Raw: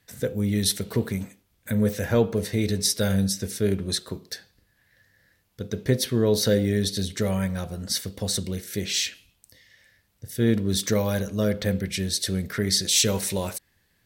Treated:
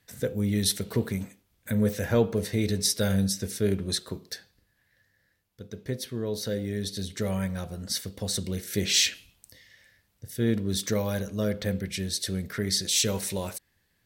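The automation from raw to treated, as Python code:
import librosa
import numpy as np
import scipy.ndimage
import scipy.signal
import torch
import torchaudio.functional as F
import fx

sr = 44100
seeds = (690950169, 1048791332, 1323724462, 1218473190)

y = fx.gain(x, sr, db=fx.line((4.29, -2.0), (5.68, -10.0), (6.45, -10.0), (7.35, -3.5), (8.3, -3.5), (9.06, 4.0), (10.44, -4.0)))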